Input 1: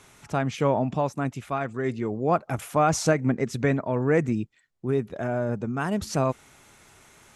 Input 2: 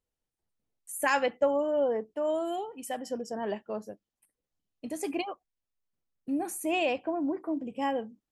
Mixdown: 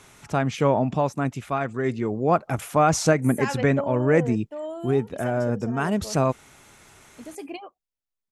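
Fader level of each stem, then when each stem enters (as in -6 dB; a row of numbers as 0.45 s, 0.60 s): +2.5 dB, -4.0 dB; 0.00 s, 2.35 s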